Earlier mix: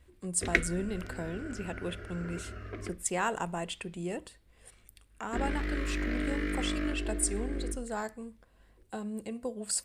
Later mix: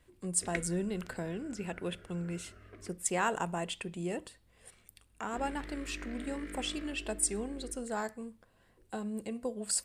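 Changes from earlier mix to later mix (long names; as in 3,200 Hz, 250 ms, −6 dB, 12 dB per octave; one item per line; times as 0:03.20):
background −11.5 dB
master: add parametric band 69 Hz −6 dB 0.41 octaves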